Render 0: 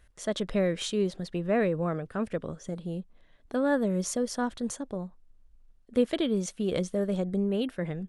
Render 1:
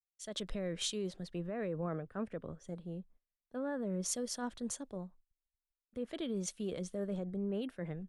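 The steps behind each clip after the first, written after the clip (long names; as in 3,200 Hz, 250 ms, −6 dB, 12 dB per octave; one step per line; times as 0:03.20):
noise gate −50 dBFS, range −22 dB
brickwall limiter −23.5 dBFS, peak gain reduction 10.5 dB
multiband upward and downward expander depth 70%
level −6.5 dB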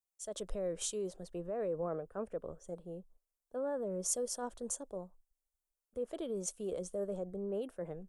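octave-band graphic EQ 125/250/500/2,000/4,000/8,000 Hz −11/−7/+4/−11/−10/+4 dB
level +2.5 dB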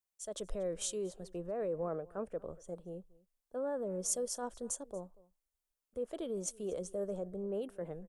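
single-tap delay 236 ms −23 dB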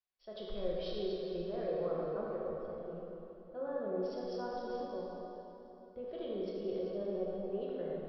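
tuned comb filter 370 Hz, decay 0.44 s, harmonics all, mix 80%
dense smooth reverb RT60 3.5 s, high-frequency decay 0.75×, DRR −5 dB
downsampling to 11,025 Hz
level +7.5 dB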